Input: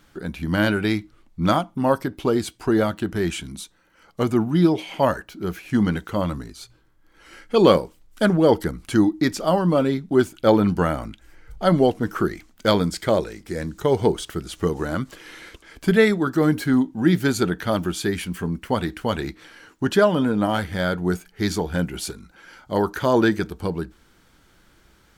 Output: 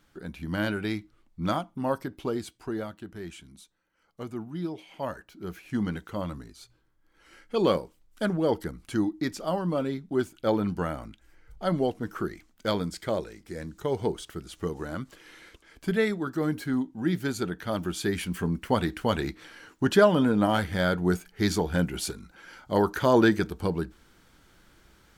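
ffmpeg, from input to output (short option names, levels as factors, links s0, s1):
-af "volume=1.88,afade=t=out:st=2.16:d=0.79:silence=0.421697,afade=t=in:st=4.89:d=0.69:silence=0.446684,afade=t=in:st=17.62:d=0.77:silence=0.446684"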